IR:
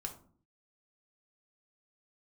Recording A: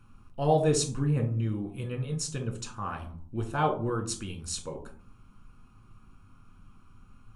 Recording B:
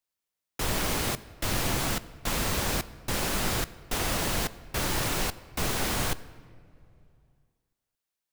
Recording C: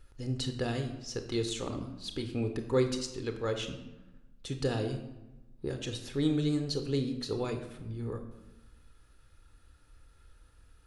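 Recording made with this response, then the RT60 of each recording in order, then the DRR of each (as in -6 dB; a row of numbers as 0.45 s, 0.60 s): A; 0.50 s, 2.6 s, 1.1 s; 3.0 dB, 15.5 dB, 6.0 dB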